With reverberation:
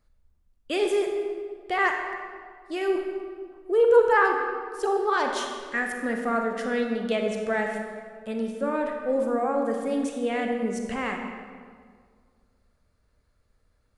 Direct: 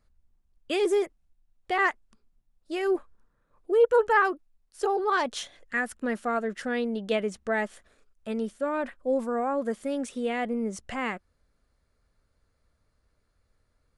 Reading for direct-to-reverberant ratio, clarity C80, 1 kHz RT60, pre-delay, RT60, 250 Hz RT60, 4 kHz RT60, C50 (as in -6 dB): 2.5 dB, 5.0 dB, 1.8 s, 31 ms, 1.9 s, 2.2 s, 1.2 s, 3.5 dB